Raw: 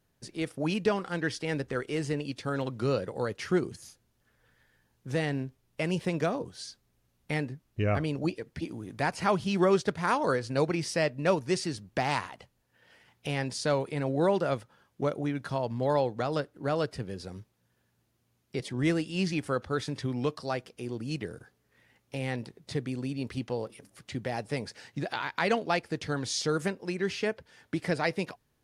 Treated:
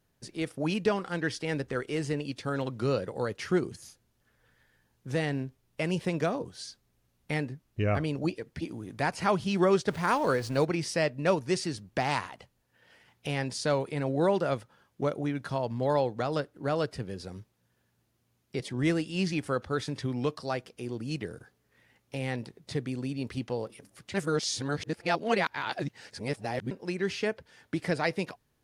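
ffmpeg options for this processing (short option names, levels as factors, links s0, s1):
-filter_complex "[0:a]asettb=1/sr,asplit=3[s0][s1][s2];[s0]atrim=end=9.904[s3];[s1]atrim=start=9.9:end=10.65,asetpts=PTS-STARTPTS,afade=t=in:d=0.004:c=qsin,afade=t=out:st=0.746:d=0.004:c=qsin,aeval=exprs='val(0)+0.5*0.00944*sgn(val(0))':c=same[s4];[s2]atrim=start=10.646[s5];[s3][s4]acrossfade=d=0.004:c1=hsin:c2=qsin[s6];[s6][s5]acrossfade=d=0.004:c1=qsin:c2=hsin,asplit=3[s7][s8][s9];[s7]atrim=end=24.142[s10];[s8]atrim=start=24.138:end=26.712,asetpts=PTS-STARTPTS,areverse[s11];[s9]atrim=start=26.708[s12];[s10][s11]acrossfade=d=0.004:c1=hsin:c2=hsin[s13];[s13][s12]acrossfade=d=0.004:c1=hsin:c2=hsin"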